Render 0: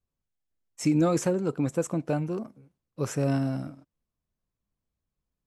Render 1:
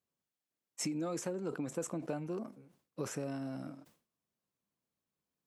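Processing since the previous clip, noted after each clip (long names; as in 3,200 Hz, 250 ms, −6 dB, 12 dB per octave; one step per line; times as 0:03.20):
downward compressor, threshold −34 dBFS, peak gain reduction 14 dB
high-pass filter 190 Hz 12 dB per octave
level that may fall only so fast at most 140 dB per second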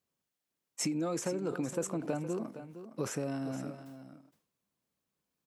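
single-tap delay 464 ms −12 dB
level +3.5 dB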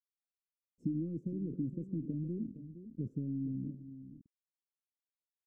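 loose part that buzzes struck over −45 dBFS, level −27 dBFS
bit reduction 9 bits
inverse Chebyshev low-pass filter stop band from 730 Hz, stop band 50 dB
level +2.5 dB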